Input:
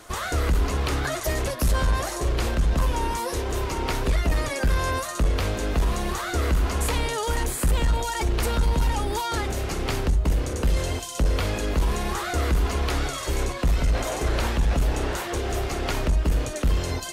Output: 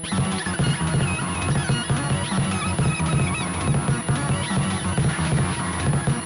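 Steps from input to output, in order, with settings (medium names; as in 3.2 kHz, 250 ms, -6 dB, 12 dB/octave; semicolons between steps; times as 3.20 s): hum 60 Hz, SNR 15 dB; wide varispeed 2.74×; on a send: two-band feedback delay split 1.4 kHz, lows 520 ms, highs 297 ms, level -10.5 dB; on the sum: class-D stage that switches slowly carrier 10 kHz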